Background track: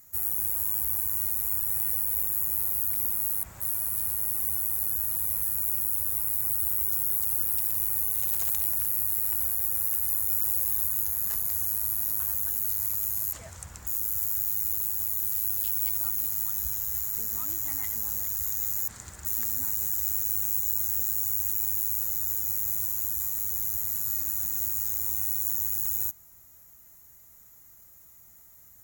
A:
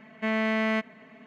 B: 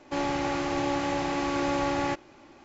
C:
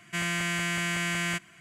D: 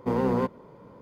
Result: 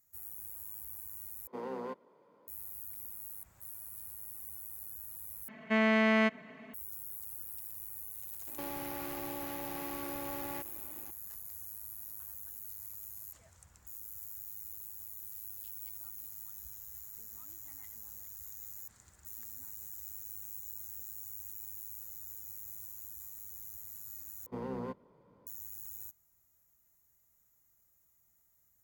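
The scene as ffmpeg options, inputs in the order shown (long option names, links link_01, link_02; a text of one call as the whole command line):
ffmpeg -i bed.wav -i cue0.wav -i cue1.wav -i cue2.wav -i cue3.wav -filter_complex "[4:a]asplit=2[link_01][link_02];[0:a]volume=-17.5dB[link_03];[link_01]highpass=330[link_04];[2:a]acompressor=threshold=-35dB:ratio=6:attack=3.2:release=140:knee=1:detection=peak[link_05];[link_03]asplit=4[link_06][link_07][link_08][link_09];[link_06]atrim=end=1.474[link_10];[link_04]atrim=end=1.01,asetpts=PTS-STARTPTS,volume=-12.5dB[link_11];[link_07]atrim=start=2.476:end=5.484[link_12];[1:a]atrim=end=1.26,asetpts=PTS-STARTPTS,volume=-0.5dB[link_13];[link_08]atrim=start=6.736:end=24.464[link_14];[link_02]atrim=end=1.01,asetpts=PTS-STARTPTS,volume=-14.5dB[link_15];[link_09]atrim=start=25.466[link_16];[link_05]atrim=end=2.64,asetpts=PTS-STARTPTS,volume=-3.5dB,afade=type=in:duration=0.004:curve=hsin,afade=type=out:start_time=2.636:duration=0.004:curve=hsin,adelay=8470[link_17];[link_10][link_11]acrossfade=duration=0.004:curve1=hsin:curve2=hsin[link_18];[link_18][link_12]acrossfade=duration=0.004:curve1=hsin:curve2=hsin[link_19];[link_19][link_13]acrossfade=duration=0.004:curve1=hsin:curve2=hsin[link_20];[link_20][link_14]acrossfade=duration=0.004:curve1=hsin:curve2=hsin[link_21];[link_21][link_15]acrossfade=duration=0.004:curve1=hsin:curve2=hsin[link_22];[link_22][link_16]acrossfade=duration=0.004:curve1=hsin:curve2=hsin[link_23];[link_23][link_17]amix=inputs=2:normalize=0" out.wav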